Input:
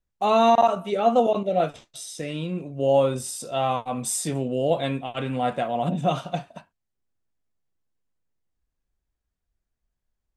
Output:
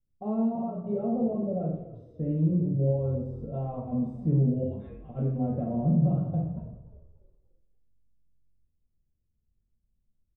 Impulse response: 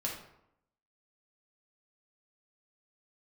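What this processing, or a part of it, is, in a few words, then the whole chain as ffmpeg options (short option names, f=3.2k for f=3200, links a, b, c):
television next door: -filter_complex "[0:a]asettb=1/sr,asplit=3[a][b][c];[a]atrim=end=4.634[d];[b]atrim=start=4.63:end=5.09,asetpts=PTS-STARTPTS,afade=t=in:d=0.004:c=qsin,afade=t=out:st=0.456:d=0.004:c=qsin,highpass=f=1.2k:w=0.5412,highpass=f=1.2k:w=1.3066[e];[c]atrim=start=5.086[f];[d][e]acrossfade=d=0.004:c1=hsin:c2=qsin[g];[g][f]acrossfade=d=0.004:c1=qsin:c2=hsin,acompressor=threshold=-23dB:ratio=6,lowpass=330[h];[1:a]atrim=start_sample=2205[i];[h][i]afir=irnorm=-1:irlink=0,lowshelf=f=390:g=3.5,asplit=5[j][k][l][m][n];[k]adelay=292,afreqshift=-45,volume=-17dB[o];[l]adelay=584,afreqshift=-90,volume=-24.3dB[p];[m]adelay=876,afreqshift=-135,volume=-31.7dB[q];[n]adelay=1168,afreqshift=-180,volume=-39dB[r];[j][o][p][q][r]amix=inputs=5:normalize=0,volume=-1dB"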